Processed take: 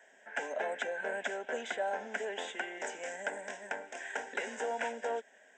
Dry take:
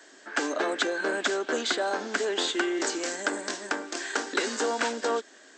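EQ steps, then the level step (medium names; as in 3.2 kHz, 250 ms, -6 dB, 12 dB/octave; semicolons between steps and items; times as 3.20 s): treble shelf 3.6 kHz -8 dB; static phaser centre 1.2 kHz, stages 6; -3.5 dB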